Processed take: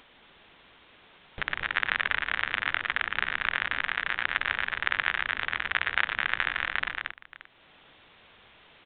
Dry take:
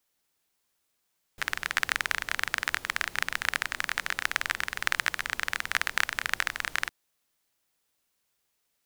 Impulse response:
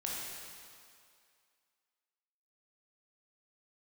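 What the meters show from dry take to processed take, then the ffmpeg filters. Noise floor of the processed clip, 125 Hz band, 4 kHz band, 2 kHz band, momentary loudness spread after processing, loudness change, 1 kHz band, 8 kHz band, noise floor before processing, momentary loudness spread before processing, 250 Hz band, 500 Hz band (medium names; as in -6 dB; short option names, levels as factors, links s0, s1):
-58 dBFS, +2.5 dB, 0.0 dB, +2.0 dB, 5 LU, +1.0 dB, +2.0 dB, under -40 dB, -77 dBFS, 3 LU, +2.0 dB, +2.0 dB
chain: -af "acompressor=mode=upward:threshold=0.0355:ratio=2.5,aecho=1:1:95|115|227|576:0.188|0.376|0.596|0.133,aresample=8000,aresample=44100"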